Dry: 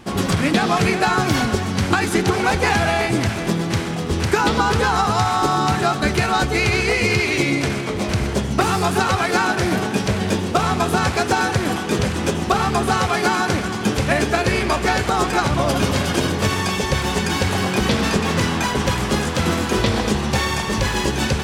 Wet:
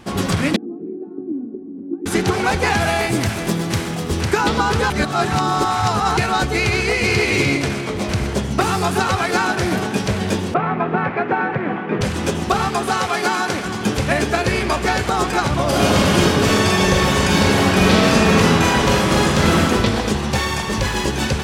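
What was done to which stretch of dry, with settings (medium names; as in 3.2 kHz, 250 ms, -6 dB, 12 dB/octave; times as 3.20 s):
0.56–2.06 s: Butterworth band-pass 300 Hz, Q 3
2.80–4.21 s: treble shelf 10 kHz +11 dB
4.90–6.17 s: reverse
6.73–7.27 s: echo throw 300 ms, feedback 15%, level -4 dB
10.54–12.01 s: Chebyshev band-pass 140–2200 Hz, order 3
12.68–13.66 s: high-pass 250 Hz 6 dB/octave
15.68–19.64 s: reverb throw, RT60 1.3 s, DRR -4 dB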